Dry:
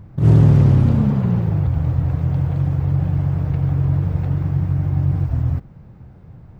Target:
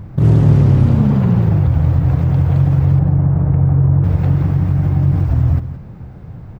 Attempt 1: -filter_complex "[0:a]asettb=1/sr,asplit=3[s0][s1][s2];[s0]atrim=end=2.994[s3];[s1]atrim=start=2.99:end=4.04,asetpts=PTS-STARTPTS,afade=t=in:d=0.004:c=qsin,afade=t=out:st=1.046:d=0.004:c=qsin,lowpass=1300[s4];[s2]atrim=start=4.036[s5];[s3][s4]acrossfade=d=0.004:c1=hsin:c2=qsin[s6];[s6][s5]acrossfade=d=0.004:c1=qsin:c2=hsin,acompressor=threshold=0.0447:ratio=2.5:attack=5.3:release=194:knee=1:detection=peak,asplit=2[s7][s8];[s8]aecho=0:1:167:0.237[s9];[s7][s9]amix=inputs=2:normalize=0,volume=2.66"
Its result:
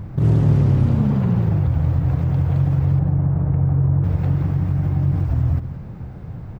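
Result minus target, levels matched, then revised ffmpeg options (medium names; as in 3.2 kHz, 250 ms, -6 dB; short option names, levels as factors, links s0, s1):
compression: peak gain reduction +5 dB
-filter_complex "[0:a]asettb=1/sr,asplit=3[s0][s1][s2];[s0]atrim=end=2.994[s3];[s1]atrim=start=2.99:end=4.04,asetpts=PTS-STARTPTS,afade=t=in:d=0.004:c=qsin,afade=t=out:st=1.046:d=0.004:c=qsin,lowpass=1300[s4];[s2]atrim=start=4.036[s5];[s3][s4]acrossfade=d=0.004:c1=hsin:c2=qsin[s6];[s6][s5]acrossfade=d=0.004:c1=qsin:c2=hsin,acompressor=threshold=0.119:ratio=2.5:attack=5.3:release=194:knee=1:detection=peak,asplit=2[s7][s8];[s8]aecho=0:1:167:0.237[s9];[s7][s9]amix=inputs=2:normalize=0,volume=2.66"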